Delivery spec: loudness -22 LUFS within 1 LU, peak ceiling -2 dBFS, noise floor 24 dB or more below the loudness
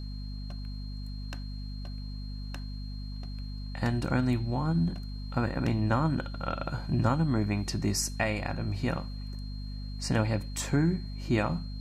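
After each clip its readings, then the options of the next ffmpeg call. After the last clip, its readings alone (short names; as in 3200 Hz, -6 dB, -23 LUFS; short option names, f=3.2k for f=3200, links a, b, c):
hum 50 Hz; harmonics up to 250 Hz; hum level -35 dBFS; steady tone 4200 Hz; tone level -50 dBFS; loudness -31.5 LUFS; peak -12.5 dBFS; loudness target -22.0 LUFS
-> -af "bandreject=f=50:t=h:w=6,bandreject=f=100:t=h:w=6,bandreject=f=150:t=h:w=6,bandreject=f=200:t=h:w=6,bandreject=f=250:t=h:w=6"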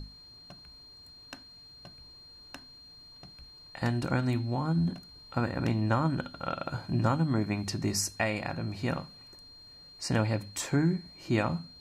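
hum none; steady tone 4200 Hz; tone level -50 dBFS
-> -af "bandreject=f=4.2k:w=30"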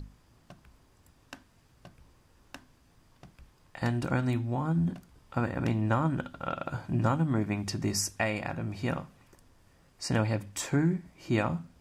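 steady tone none; loudness -31.0 LUFS; peak -13.5 dBFS; loudness target -22.0 LUFS
-> -af "volume=9dB"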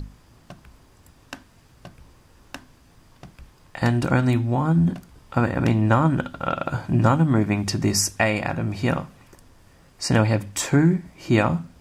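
loudness -22.0 LUFS; peak -4.5 dBFS; noise floor -54 dBFS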